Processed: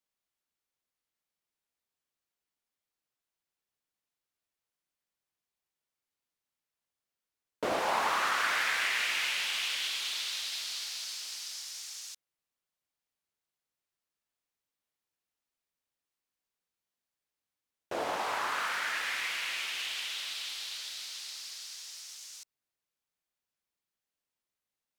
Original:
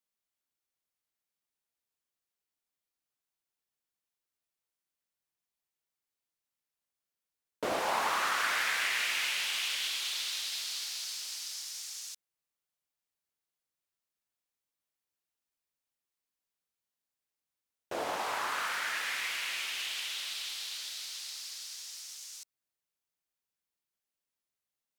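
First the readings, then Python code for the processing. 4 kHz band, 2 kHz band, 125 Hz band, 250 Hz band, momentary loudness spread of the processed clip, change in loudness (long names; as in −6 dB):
+0.5 dB, +1.0 dB, +1.5 dB, +1.5 dB, 14 LU, +1.0 dB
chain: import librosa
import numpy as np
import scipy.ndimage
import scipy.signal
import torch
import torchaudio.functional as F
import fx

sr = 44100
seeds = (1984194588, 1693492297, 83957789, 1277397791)

y = fx.high_shelf(x, sr, hz=6700.0, db=-5.5)
y = y * 10.0 ** (1.5 / 20.0)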